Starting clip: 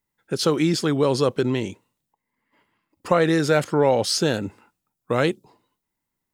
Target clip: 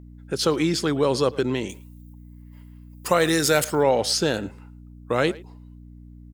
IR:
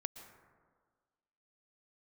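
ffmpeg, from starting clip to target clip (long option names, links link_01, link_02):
-filter_complex "[0:a]asettb=1/sr,asplit=3[link_01][link_02][link_03];[link_01]atrim=end=1.694[link_04];[link_02]atrim=start=1.69:end=3.83,asetpts=PTS-STARTPTS,afade=type=in:duration=0.004:curve=qsin,afade=type=out:start_time=2.136:duration=0.004:curve=qsin,aemphasis=mode=production:type=75fm[link_05];[link_03]atrim=start=3.826[link_06];[link_04][link_05]acrossfade=duration=0.004:curve1=hsin:curve2=qsin[link_07];[link_07][link_06]acrossfade=duration=0.004:curve1=qsin:curve2=hsin,asplit=2[link_08][link_09];[link_09]adelay=110,highpass=300,lowpass=3400,asoftclip=type=hard:threshold=-14dB,volume=-19dB[link_10];[link_08][link_10]amix=inputs=2:normalize=0,aeval=exprs='val(0)+0.0126*(sin(2*PI*60*n/s)+sin(2*PI*2*60*n/s)/2+sin(2*PI*3*60*n/s)/3+sin(2*PI*4*60*n/s)/4+sin(2*PI*5*60*n/s)/5)':channel_layout=same,lowshelf=frequency=210:gain=-5.5"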